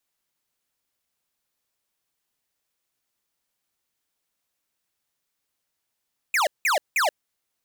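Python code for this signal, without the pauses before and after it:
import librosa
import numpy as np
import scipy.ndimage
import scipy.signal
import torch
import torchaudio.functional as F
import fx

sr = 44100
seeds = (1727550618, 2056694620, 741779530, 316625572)

y = fx.laser_zaps(sr, level_db=-21, start_hz=2600.0, end_hz=540.0, length_s=0.13, wave='square', shots=3, gap_s=0.18)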